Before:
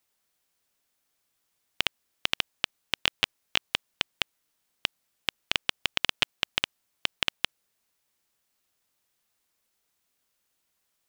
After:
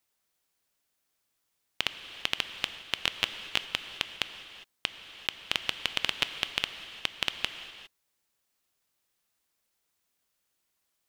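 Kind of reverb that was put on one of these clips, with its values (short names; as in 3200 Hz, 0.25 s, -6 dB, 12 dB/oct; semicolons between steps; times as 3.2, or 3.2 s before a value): non-linear reverb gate 0.43 s flat, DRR 9 dB; gain -2.5 dB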